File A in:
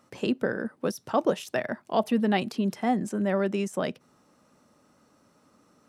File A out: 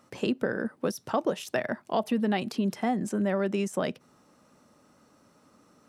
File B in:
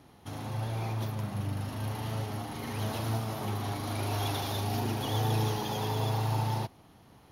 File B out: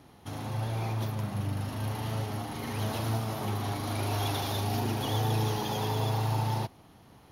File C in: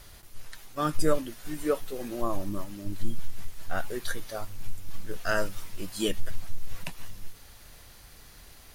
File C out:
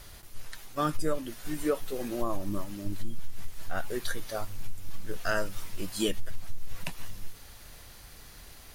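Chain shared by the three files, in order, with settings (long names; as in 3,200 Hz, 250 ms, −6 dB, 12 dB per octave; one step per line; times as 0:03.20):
downward compressor 3 to 1, threshold −25 dBFS
level +1.5 dB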